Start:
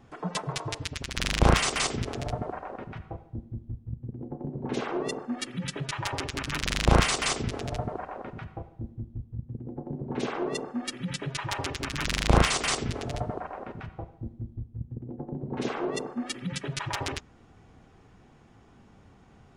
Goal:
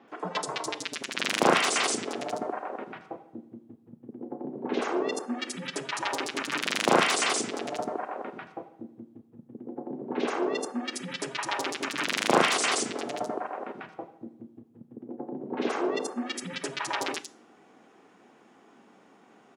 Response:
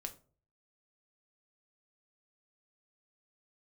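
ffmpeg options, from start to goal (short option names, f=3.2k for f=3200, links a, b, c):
-filter_complex "[0:a]highpass=f=240:w=0.5412,highpass=f=240:w=1.3066,acrossover=split=4700[a][b];[b]adelay=80[c];[a][c]amix=inputs=2:normalize=0,asplit=2[d][e];[1:a]atrim=start_sample=2205,asetrate=26019,aresample=44100[f];[e][f]afir=irnorm=-1:irlink=0,volume=-7.5dB[g];[d][g]amix=inputs=2:normalize=0"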